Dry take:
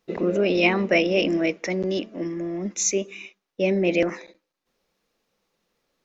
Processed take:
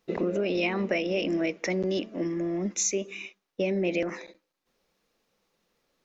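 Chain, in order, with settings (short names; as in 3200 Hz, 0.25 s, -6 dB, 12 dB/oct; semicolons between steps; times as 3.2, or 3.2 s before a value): compressor 6:1, threshold -24 dBFS, peak gain reduction 10 dB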